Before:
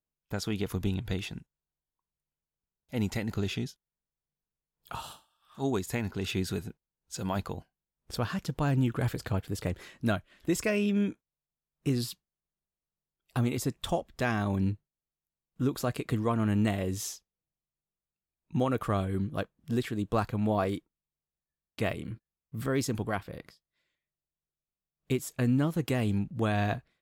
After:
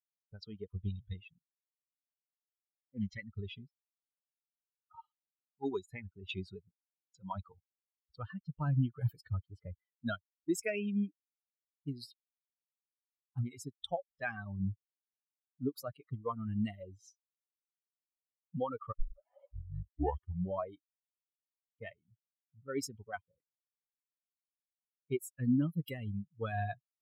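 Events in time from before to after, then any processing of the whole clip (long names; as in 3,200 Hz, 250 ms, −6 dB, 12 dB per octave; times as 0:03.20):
0:01.21–0:03.18: highs frequency-modulated by the lows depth 0.3 ms
0:18.92: tape start 1.76 s
whole clip: spectral dynamics exaggerated over time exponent 3; low-pass that shuts in the quiet parts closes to 410 Hz, open at −34.5 dBFS; speech leveller within 4 dB 2 s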